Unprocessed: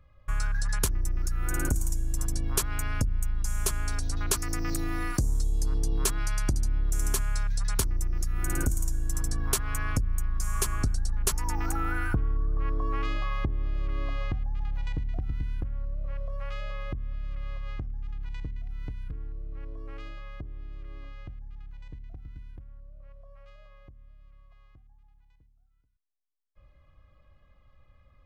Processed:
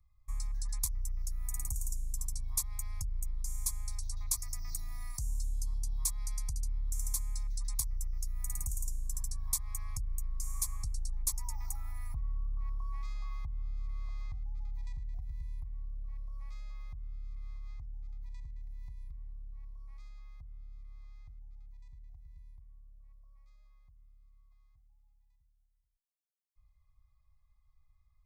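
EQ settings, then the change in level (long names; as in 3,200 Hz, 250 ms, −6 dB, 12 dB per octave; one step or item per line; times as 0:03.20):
Butterworth band-reject 1,500 Hz, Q 1.5
guitar amp tone stack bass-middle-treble 10-0-10
phaser with its sweep stopped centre 1,200 Hz, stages 4
−2.5 dB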